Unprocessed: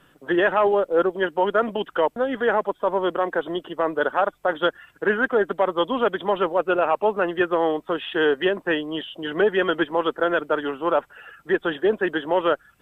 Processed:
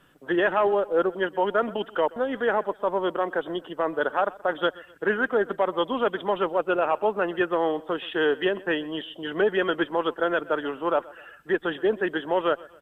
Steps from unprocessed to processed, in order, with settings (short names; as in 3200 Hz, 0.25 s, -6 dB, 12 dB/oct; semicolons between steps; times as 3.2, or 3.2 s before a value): feedback echo 0.127 s, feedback 40%, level -21.5 dB; gain -3 dB